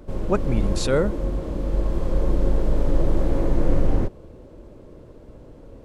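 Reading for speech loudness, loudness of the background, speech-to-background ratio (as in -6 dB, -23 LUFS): -25.0 LUFS, -26.0 LUFS, 1.0 dB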